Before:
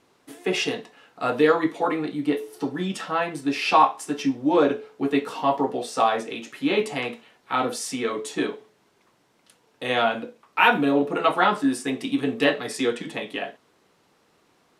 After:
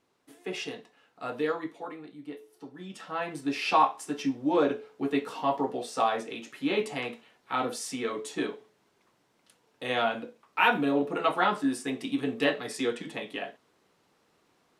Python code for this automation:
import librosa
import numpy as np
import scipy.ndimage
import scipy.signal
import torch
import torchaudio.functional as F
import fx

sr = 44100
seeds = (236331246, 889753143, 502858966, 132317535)

y = fx.gain(x, sr, db=fx.line((1.48, -11.0), (2.01, -17.5), (2.73, -17.5), (3.32, -5.5)))